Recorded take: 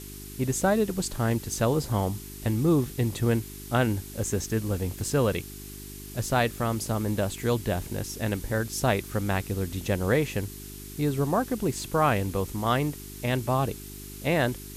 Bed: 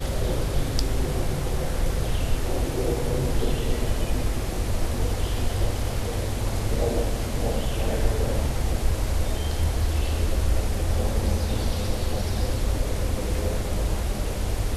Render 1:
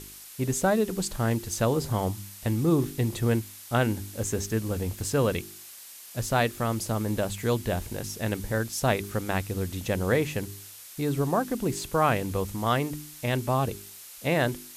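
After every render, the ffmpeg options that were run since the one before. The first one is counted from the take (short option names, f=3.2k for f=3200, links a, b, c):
-af "bandreject=f=50:t=h:w=4,bandreject=f=100:t=h:w=4,bandreject=f=150:t=h:w=4,bandreject=f=200:t=h:w=4,bandreject=f=250:t=h:w=4,bandreject=f=300:t=h:w=4,bandreject=f=350:t=h:w=4,bandreject=f=400:t=h:w=4"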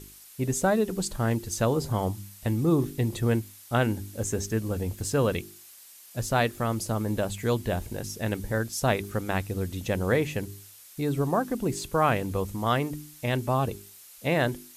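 -af "afftdn=nr=6:nf=-46"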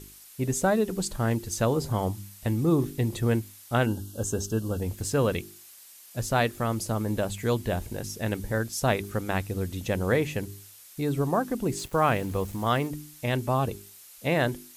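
-filter_complex "[0:a]asplit=3[a][b][c];[a]afade=t=out:st=3.85:d=0.02[d];[b]asuperstop=centerf=2100:order=20:qfactor=2.1,afade=t=in:st=3.85:d=0.02,afade=t=out:st=4.8:d=0.02[e];[c]afade=t=in:st=4.8:d=0.02[f];[d][e][f]amix=inputs=3:normalize=0,asettb=1/sr,asplit=3[g][h][i];[g]atrim=end=11.784[j];[h]atrim=start=11.78:end=12.87,asetpts=PTS-STARTPTS,afade=t=in:d=0.004:c=qsin,afade=t=out:st=1.086:d=0.004:c=qsin,aeval=exprs='val(0)*gte(abs(val(0)),0.00708)':c=same[k];[i]atrim=start=12.866[l];[j][k]acrossfade=d=0.004:c1=hsin:c2=qsin[m];[m][l]acrossfade=d=0.004:c1=qsin:c2=hsin"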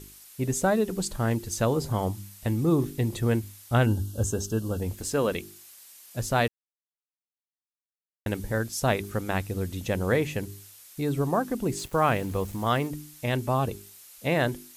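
-filter_complex "[0:a]asettb=1/sr,asplit=3[a][b][c];[a]atrim=end=3.434[d];[b]atrim=start=3.43:end=4.31,asetpts=PTS-STARTPTS,afade=t=in:d=0.004:c=qsin,afade=t=out:st=0.876:d=0.004:c=qsin,equalizer=f=68:t=o:w=1.3:g=13[e];[c]atrim=start=4.306[f];[d][e]acrossfade=d=0.004:c1=hsin:c2=qsin[g];[g][f]acrossfade=d=0.004:c1=qsin:c2=hsin,asettb=1/sr,asplit=3[h][i][j];[h]atrim=end=4.984[k];[i]atrim=start=4.98:end=5.42,asetpts=PTS-STARTPTS,afade=t=in:d=0.004:c=qsin,afade=t=out:st=0.436:d=0.004:c=qsin,equalizer=f=110:t=o:w=0.77:g=-11[l];[j]atrim=start=5.416[m];[k][l]acrossfade=d=0.004:c1=hsin:c2=qsin[n];[n][m]acrossfade=d=0.004:c1=qsin:c2=hsin,asplit=3[o][p][q];[o]atrim=end=6.48,asetpts=PTS-STARTPTS,afade=t=out:st=6.476:d=0.004:c=hsin[r];[p]atrim=start=6.48:end=8.26,asetpts=PTS-STARTPTS,volume=0[s];[q]atrim=start=8.26,asetpts=PTS-STARTPTS,afade=t=in:d=0.004:c=hsin[t];[r][s][t]concat=n=3:v=0:a=1"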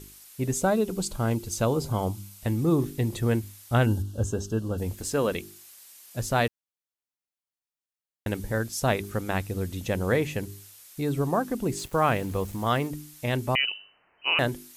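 -filter_complex "[0:a]asettb=1/sr,asplit=3[a][b][c];[a]atrim=end=0.574[d];[b]atrim=start=0.57:end=2.41,asetpts=PTS-STARTPTS,afade=t=in:d=0.004:c=qsin,afade=t=out:st=1.836:d=0.004:c=qsin,bandreject=f=1.8k:w=5[e];[c]atrim=start=2.406[f];[d][e]acrossfade=d=0.004:c1=hsin:c2=qsin[g];[g][f]acrossfade=d=0.004:c1=qsin:c2=hsin,asettb=1/sr,asplit=3[h][i][j];[h]atrim=end=4.024[k];[i]atrim=start=4.02:end=4.78,asetpts=PTS-STARTPTS,afade=t=in:d=0.004:c=qsin,afade=t=out:st=0.756:d=0.004:c=qsin,lowpass=f=3.8k:p=1[l];[j]atrim=start=4.776[m];[k][l]acrossfade=d=0.004:c1=hsin:c2=qsin[n];[n][m]acrossfade=d=0.004:c1=qsin:c2=hsin,asettb=1/sr,asplit=3[o][p][q];[o]atrim=end=13.554[r];[p]atrim=start=13.55:end=14.39,asetpts=PTS-STARTPTS,afade=t=in:d=0.004:c=qsin,afade=t=out:st=0.836:d=0.004:c=qsin,lowpass=f=2.6k:t=q:w=0.5098,lowpass=f=2.6k:t=q:w=0.6013,lowpass=f=2.6k:t=q:w=0.9,lowpass=f=2.6k:t=q:w=2.563,afreqshift=-3100[s];[q]atrim=start=14.386[t];[r][s]acrossfade=d=0.004:c1=hsin:c2=qsin[u];[u][t]acrossfade=d=0.004:c1=qsin:c2=hsin"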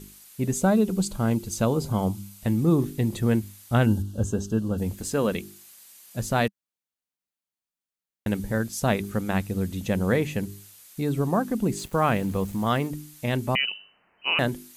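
-af "equalizer=f=200:w=2.7:g=8,bandreject=f=5.4k:w=25"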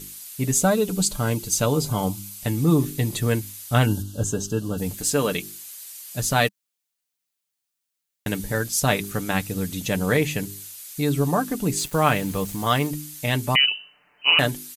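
-af "highshelf=f=2k:g=10,aecho=1:1:6.8:0.5"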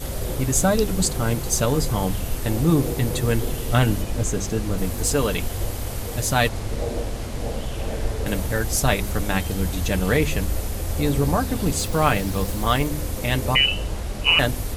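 -filter_complex "[1:a]volume=-2.5dB[a];[0:a][a]amix=inputs=2:normalize=0"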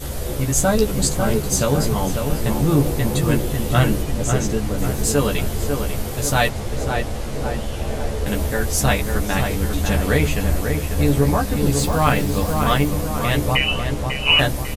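-filter_complex "[0:a]asplit=2[a][b];[b]adelay=14,volume=-3.5dB[c];[a][c]amix=inputs=2:normalize=0,asplit=2[d][e];[e]adelay=546,lowpass=f=2.2k:p=1,volume=-5dB,asplit=2[f][g];[g]adelay=546,lowpass=f=2.2k:p=1,volume=0.54,asplit=2[h][i];[i]adelay=546,lowpass=f=2.2k:p=1,volume=0.54,asplit=2[j][k];[k]adelay=546,lowpass=f=2.2k:p=1,volume=0.54,asplit=2[l][m];[m]adelay=546,lowpass=f=2.2k:p=1,volume=0.54,asplit=2[n][o];[o]adelay=546,lowpass=f=2.2k:p=1,volume=0.54,asplit=2[p][q];[q]adelay=546,lowpass=f=2.2k:p=1,volume=0.54[r];[d][f][h][j][l][n][p][r]amix=inputs=8:normalize=0"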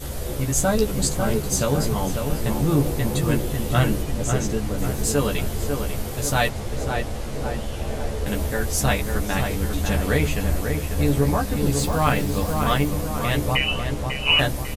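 -af "volume=-3dB"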